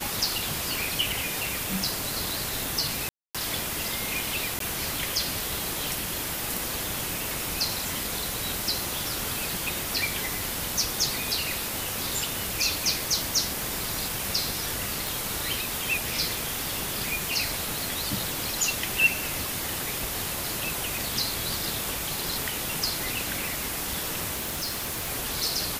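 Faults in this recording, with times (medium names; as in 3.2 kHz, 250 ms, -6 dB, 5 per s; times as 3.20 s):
crackle 18 per s -34 dBFS
3.09–3.35 s: dropout 256 ms
4.59–4.60 s: dropout 13 ms
13.62 s: pop
15.07 s: pop
24.35–25.11 s: clipped -27 dBFS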